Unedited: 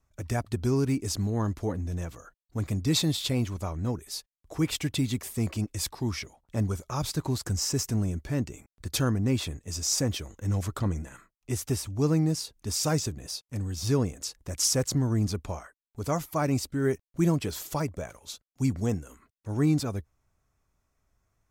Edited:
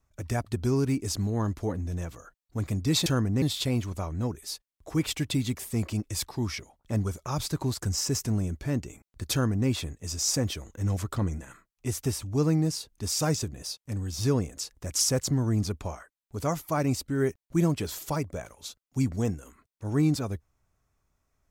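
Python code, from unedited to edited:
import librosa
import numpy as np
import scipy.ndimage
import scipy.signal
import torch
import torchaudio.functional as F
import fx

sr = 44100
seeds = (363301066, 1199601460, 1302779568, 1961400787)

y = fx.edit(x, sr, fx.duplicate(start_s=8.96, length_s=0.36, to_s=3.06), tone=tone)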